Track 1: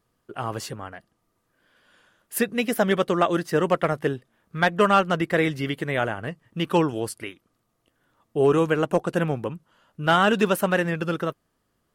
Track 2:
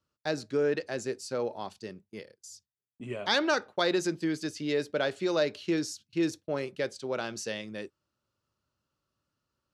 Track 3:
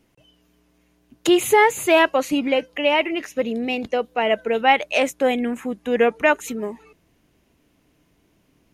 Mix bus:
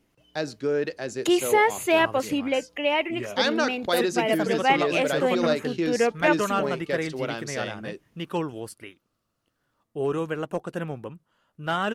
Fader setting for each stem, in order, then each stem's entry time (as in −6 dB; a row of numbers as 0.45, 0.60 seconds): −7.5, +2.0, −5.0 decibels; 1.60, 0.10, 0.00 seconds